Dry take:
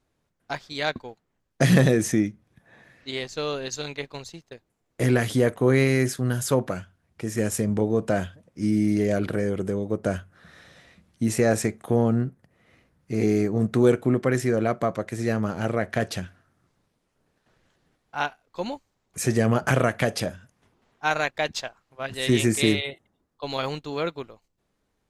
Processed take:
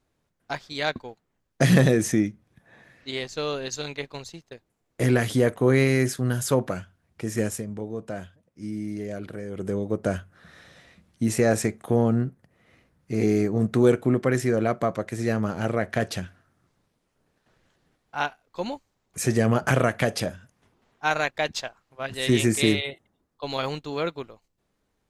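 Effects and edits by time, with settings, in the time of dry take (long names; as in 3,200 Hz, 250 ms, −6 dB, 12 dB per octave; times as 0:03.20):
0:07.40–0:09.74: duck −10 dB, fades 0.25 s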